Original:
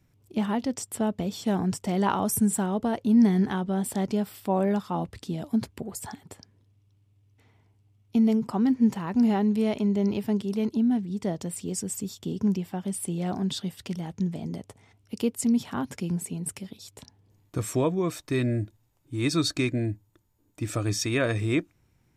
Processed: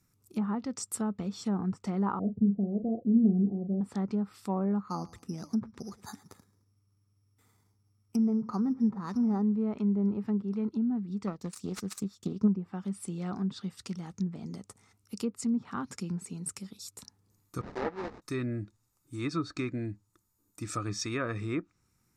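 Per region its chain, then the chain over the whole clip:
2.19–3.81 s: dynamic bell 370 Hz, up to +4 dB, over -33 dBFS, Q 0.94 + rippled Chebyshev low-pass 710 Hz, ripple 3 dB + doubling 40 ms -8.5 dB
4.79–9.42 s: feedback delay 110 ms, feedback 32%, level -21 dB + careless resampling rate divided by 8×, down filtered, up hold
11.27–12.48 s: self-modulated delay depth 0.28 ms + transient shaper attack +6 dB, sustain -6 dB
17.61–18.22 s: resonant high-pass 520 Hz, resonance Q 1.8 + sample-rate reducer 1.3 kHz, jitter 20% + tape spacing loss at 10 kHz 31 dB
whole clip: graphic EQ with 31 bands 200 Hz +6 dB, 630 Hz -7 dB, 1.25 kHz +11 dB, 3.15 kHz -7 dB; low-pass that closes with the level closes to 1 kHz, closed at -18 dBFS; tone controls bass -2 dB, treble +12 dB; trim -7 dB

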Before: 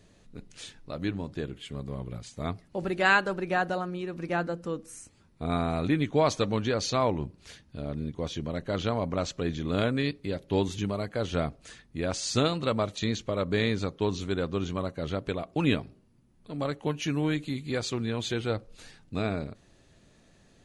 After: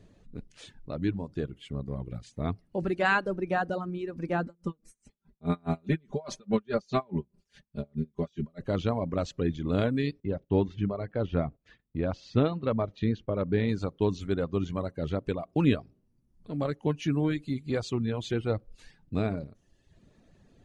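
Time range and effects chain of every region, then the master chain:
4.46–8.61 s: comb 5 ms, depth 94% + logarithmic tremolo 4.8 Hz, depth 28 dB
10.20–13.69 s: gate -51 dBFS, range -14 dB + distance through air 260 m
whole clip: tilt shelf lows +4 dB, about 680 Hz; reverb removal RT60 0.89 s; treble shelf 6.3 kHz -7 dB

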